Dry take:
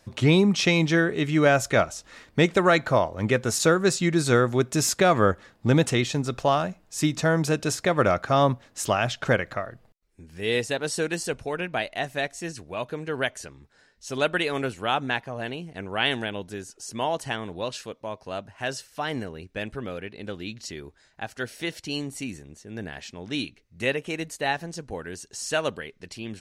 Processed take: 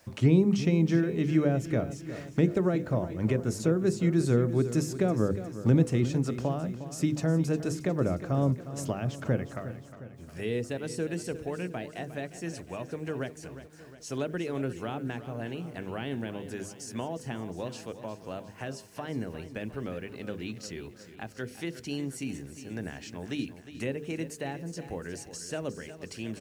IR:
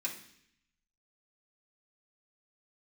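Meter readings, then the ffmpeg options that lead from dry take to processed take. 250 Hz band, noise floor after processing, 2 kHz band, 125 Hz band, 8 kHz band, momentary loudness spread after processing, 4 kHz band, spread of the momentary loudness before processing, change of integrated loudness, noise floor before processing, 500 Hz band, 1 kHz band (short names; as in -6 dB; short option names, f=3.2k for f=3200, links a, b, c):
-2.0 dB, -49 dBFS, -14.0 dB, -0.5 dB, -10.5 dB, 15 LU, -14.5 dB, 16 LU, -6.0 dB, -60 dBFS, -7.0 dB, -13.5 dB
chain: -filter_complex "[0:a]highpass=50,equalizer=f=3.7k:t=o:w=0.41:g=-5,bandreject=f=50:t=h:w=6,bandreject=f=100:t=h:w=6,bandreject=f=150:t=h:w=6,bandreject=f=200:t=h:w=6,bandreject=f=250:t=h:w=6,bandreject=f=300:t=h:w=6,bandreject=f=350:t=h:w=6,bandreject=f=400:t=h:w=6,bandreject=f=450:t=h:w=6,bandreject=f=500:t=h:w=6,acrossover=split=420[a][b];[b]acompressor=threshold=-40dB:ratio=6[c];[a][c]amix=inputs=2:normalize=0,acrusher=bits=10:mix=0:aa=0.000001,aecho=1:1:358|716|1074|1432|1790|2148:0.224|0.125|0.0702|0.0393|0.022|0.0123"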